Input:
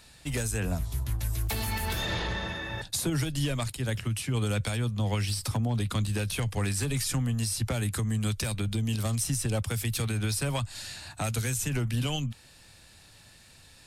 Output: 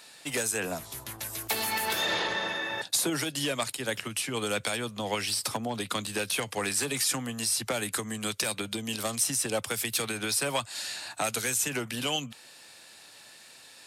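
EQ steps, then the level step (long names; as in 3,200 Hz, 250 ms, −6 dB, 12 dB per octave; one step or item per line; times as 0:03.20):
high-pass filter 350 Hz 12 dB per octave
+4.5 dB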